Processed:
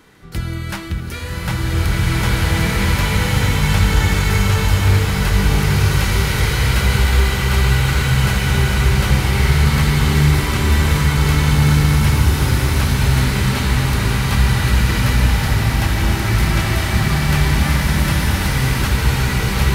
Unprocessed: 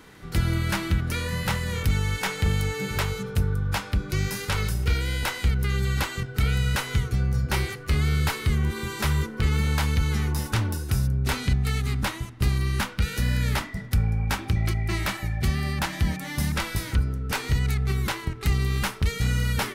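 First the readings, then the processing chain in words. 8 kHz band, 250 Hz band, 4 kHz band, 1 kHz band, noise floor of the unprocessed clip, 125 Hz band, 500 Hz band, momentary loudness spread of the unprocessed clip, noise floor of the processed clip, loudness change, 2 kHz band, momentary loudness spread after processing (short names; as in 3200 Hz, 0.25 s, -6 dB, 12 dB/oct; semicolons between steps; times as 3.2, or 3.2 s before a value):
+10.0 dB, +10.0 dB, +10.0 dB, +10.0 dB, -39 dBFS, +9.5 dB, +9.0 dB, 3 LU, -24 dBFS, +9.5 dB, +10.0 dB, 3 LU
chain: bloom reverb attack 1.94 s, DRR -10 dB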